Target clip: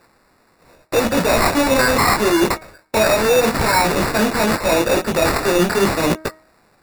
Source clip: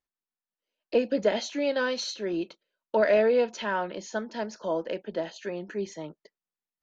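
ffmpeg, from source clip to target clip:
-filter_complex "[0:a]apsyclip=29dB,asplit=2[a][b];[b]acontrast=66,volume=2.5dB[c];[a][c]amix=inputs=2:normalize=0,highpass=130,areverse,acompressor=threshold=-8dB:ratio=12,areverse,aeval=exprs='0.841*(cos(1*acos(clip(val(0)/0.841,-1,1)))-cos(1*PI/2))+0.0168*(cos(3*acos(clip(val(0)/0.841,-1,1)))-cos(3*PI/2))+0.211*(cos(7*acos(clip(val(0)/0.841,-1,1)))-cos(7*PI/2))':c=same,adynamicequalizer=threshold=0.0398:dfrequency=3600:dqfactor=1.4:tfrequency=3600:tqfactor=1.4:attack=5:release=100:ratio=0.375:range=2:mode=boostabove:tftype=bell,asoftclip=type=tanh:threshold=-11.5dB,flanger=delay=17:depth=6.1:speed=0.81,acrusher=samples=14:mix=1:aa=0.000001,bandreject=f=315.7:t=h:w=4,bandreject=f=631.4:t=h:w=4,bandreject=f=947.1:t=h:w=4,bandreject=f=1.2628k:t=h:w=4,bandreject=f=1.5785k:t=h:w=4,bandreject=f=1.8942k:t=h:w=4,bandreject=f=2.2099k:t=h:w=4,volume=3dB"

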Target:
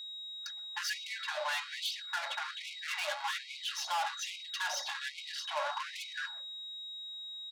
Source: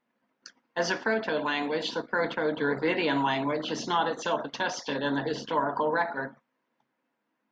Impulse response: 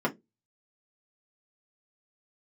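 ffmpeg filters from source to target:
-filter_complex "[0:a]aecho=1:1:3.6:0.99,aeval=exprs='val(0)+0.00891*sin(2*PI*3800*n/s)':c=same,aeval=exprs='(tanh(31.6*val(0)+0.2)-tanh(0.2))/31.6':c=same,asplit=2[a][b];[1:a]atrim=start_sample=2205,adelay=126[c];[b][c]afir=irnorm=-1:irlink=0,volume=-32.5dB[d];[a][d]amix=inputs=2:normalize=0,afftfilt=real='re*gte(b*sr/1024,530*pow(2100/530,0.5+0.5*sin(2*PI*1.2*pts/sr)))':imag='im*gte(b*sr/1024,530*pow(2100/530,0.5+0.5*sin(2*PI*1.2*pts/sr)))':win_size=1024:overlap=0.75"

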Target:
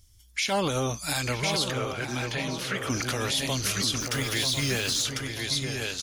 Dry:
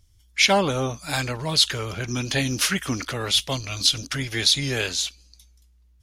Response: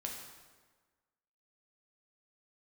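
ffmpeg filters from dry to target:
-filter_complex "[0:a]highshelf=f=4.4k:g=8.5,asplit=2[a][b];[b]aecho=0:1:1047:0.376[c];[a][c]amix=inputs=2:normalize=0,alimiter=limit=-17.5dB:level=0:latency=1:release=77,asettb=1/sr,asplit=3[d][e][f];[d]atrim=end=1.714[g];[e]atrim=start=1.71:end=2.9,asetpts=PTS-STARTPTS,afade=t=in:d=0.004:c=qsin,afade=t=out:st=1.186:d=0.004:c=qsin,bass=f=250:g=-8,treble=f=4k:g=-12[h];[f]atrim=start=2.896[i];[g][h]acrossfade=d=0.004:c1=hsin:c2=qsin[j];[j][i]acrossfade=d=0.004:c1=qsin:c2=hsin,asettb=1/sr,asplit=3[k][l][m];[k]atrim=end=4.004[n];[l]atrim=start=4:end=5.03,asetpts=PTS-STARTPTS,afade=t=in:d=0.004:c=qsin,afade=t=out:st=1.026:d=0.004:c=qsin,acrusher=bits=5:mix=0:aa=0.5[o];[m]atrim=start=5.026[p];[n][o]acrossfade=d=0.004:c1=hsin:c2=qsin[q];[q][p]acrossfade=d=0.004:c1=qsin:c2=hsin,asplit=2[r][s];[s]adelay=938,lowpass=f=1.8k:p=1,volume=-6dB,asplit=2[t][u];[u]adelay=938,lowpass=f=1.8k:p=1,volume=0.39,asplit=2[v][w];[w]adelay=938,lowpass=f=1.8k:p=1,volume=0.39,asplit=2[x][y];[y]adelay=938,lowpass=f=1.8k:p=1,volume=0.39,asplit=2[z][aa];[aa]adelay=938,lowpass=f=1.8k:p=1,volume=0.39[ab];[t][v][x][z][ab]amix=inputs=5:normalize=0[ac];[r][ac]amix=inputs=2:normalize=0"

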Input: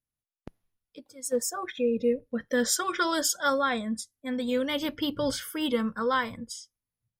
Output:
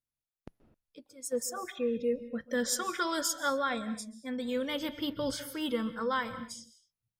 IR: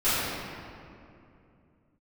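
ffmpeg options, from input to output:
-filter_complex "[0:a]asplit=2[a][b];[1:a]atrim=start_sample=2205,atrim=end_sample=6174,adelay=126[c];[b][c]afir=irnorm=-1:irlink=0,volume=-26.5dB[d];[a][d]amix=inputs=2:normalize=0,volume=-5dB"

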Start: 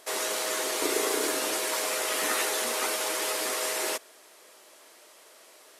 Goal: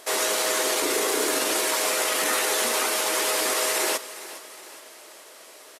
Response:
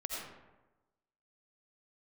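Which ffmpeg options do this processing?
-filter_complex "[0:a]alimiter=limit=-21dB:level=0:latency=1:release=29,asplit=2[a][b];[b]aecho=0:1:413|826|1239|1652:0.168|0.0823|0.0403|0.0198[c];[a][c]amix=inputs=2:normalize=0,volume=6.5dB"

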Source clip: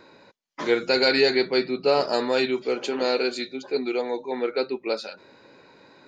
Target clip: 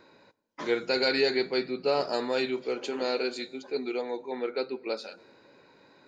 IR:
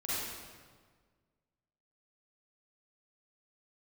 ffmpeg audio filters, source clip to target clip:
-filter_complex "[0:a]asplit=2[a][b];[b]equalizer=f=3.6k:w=0.65:g=-13.5[c];[1:a]atrim=start_sample=2205,highshelf=f=3.3k:g=10[d];[c][d]afir=irnorm=-1:irlink=0,volume=-23dB[e];[a][e]amix=inputs=2:normalize=0,volume=-6dB"

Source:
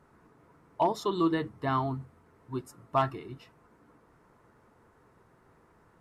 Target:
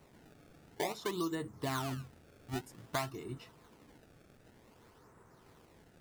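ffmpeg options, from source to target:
-filter_complex "[0:a]acrossover=split=1400|3800[a][b][c];[a]acompressor=threshold=-36dB:ratio=4[d];[b]acompressor=threshold=-51dB:ratio=4[e];[c]acompressor=threshold=-57dB:ratio=4[f];[d][e][f]amix=inputs=3:normalize=0,acrossover=split=1800[g][h];[g]acrusher=samples=25:mix=1:aa=0.000001:lfo=1:lforange=40:lforate=0.53[i];[i][h]amix=inputs=2:normalize=0,volume=1dB"

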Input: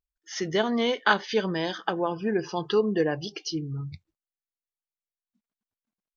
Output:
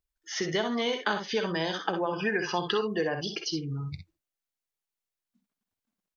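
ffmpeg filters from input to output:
-filter_complex "[0:a]asettb=1/sr,asplit=3[a][b][c];[a]atrim=end=2.134[d];[b]atrim=start=2.13:end=2.82,asetpts=PTS-STARTPTS,afade=t=in:d=0.004:c=qsin,afade=t=out:st=0.686:d=0.004:c=qsin,equalizer=f=2k:t=o:w=2.1:g=13.5[e];[c]atrim=start=2.816[f];[d][e]acrossfade=d=0.004:c1=hsin:c2=qsin[g];[g][f]acrossfade=d=0.004:c1=qsin:c2=hsin,aecho=1:1:51|62:0.251|0.355,acrossover=split=600|5800[h][i][j];[h]acompressor=threshold=-34dB:ratio=4[k];[i]acompressor=threshold=-33dB:ratio=4[l];[j]acompressor=threshold=-49dB:ratio=4[m];[k][l][m]amix=inputs=3:normalize=0,volume=3dB"

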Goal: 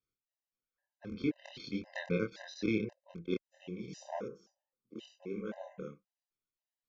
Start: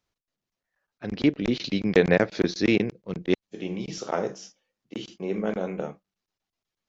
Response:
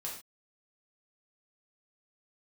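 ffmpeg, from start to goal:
-filter_complex "[0:a]flanger=delay=22.5:depth=5.6:speed=1.6,asettb=1/sr,asplit=3[a][b][c];[a]atrim=end=4.284[d];[b]atrim=start=4.28:end=4.99,asetpts=PTS-STARTPTS,afade=t=in:d=0.004:c=qsin,afade=t=out:st=0.706:d=0.004:c=qsin,highshelf=f=1.6k:t=q:w=1.5:g=-12[e];[c]atrim=start=4.986[f];[d][e]acrossfade=d=0.004:c1=hsin:c2=qsin[g];[g][f]acrossfade=d=0.004:c1=qsin:c2=hsin,afftfilt=real='re*gt(sin(2*PI*1.9*pts/sr)*(1-2*mod(floor(b*sr/1024/520),2)),0)':imag='im*gt(sin(2*PI*1.9*pts/sr)*(1-2*mod(floor(b*sr/1024/520),2)),0)':win_size=1024:overlap=0.75,volume=-7.5dB"

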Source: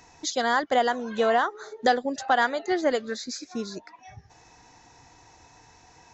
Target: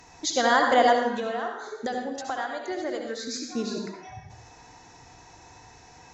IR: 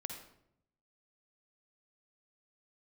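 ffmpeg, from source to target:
-filter_complex "[0:a]asettb=1/sr,asplit=3[a][b][c];[a]atrim=end=0.924[d];[b]atrim=start=0.92:end=3.34,asetpts=PTS-STARTPTS,afade=t=in:d=0.004:c=qsin,afade=t=out:st=2.416:d=0.004:c=qsin,acompressor=threshold=-33dB:ratio=4[e];[c]atrim=start=3.336[f];[d][e]acrossfade=d=0.004:c1=hsin:c2=qsin[g];[g][f]acrossfade=d=0.004:c1=qsin:c2=hsin[h];[1:a]atrim=start_sample=2205,afade=t=out:st=0.27:d=0.01,atrim=end_sample=12348,asetrate=32634,aresample=44100[i];[h][i]afir=irnorm=-1:irlink=0,volume=3.5dB"

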